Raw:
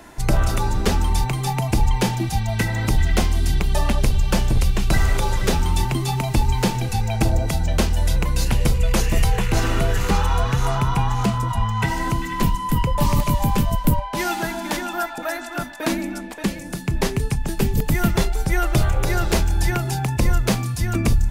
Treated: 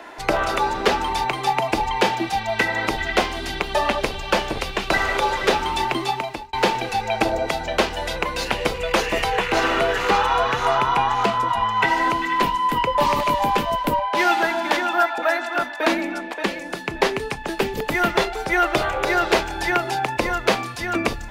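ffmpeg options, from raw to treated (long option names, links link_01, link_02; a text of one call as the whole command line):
ffmpeg -i in.wav -filter_complex "[0:a]asplit=2[link_01][link_02];[link_01]atrim=end=6.53,asetpts=PTS-STARTPTS,afade=type=out:start_time=6.01:duration=0.52[link_03];[link_02]atrim=start=6.53,asetpts=PTS-STARTPTS,afade=type=in:duration=0.004:curve=hsin[link_04];[link_03][link_04]concat=n=2:v=0:a=1,acrossover=split=330 4300:gain=0.0631 1 0.158[link_05][link_06][link_07];[link_05][link_06][link_07]amix=inputs=3:normalize=0,volume=7dB" out.wav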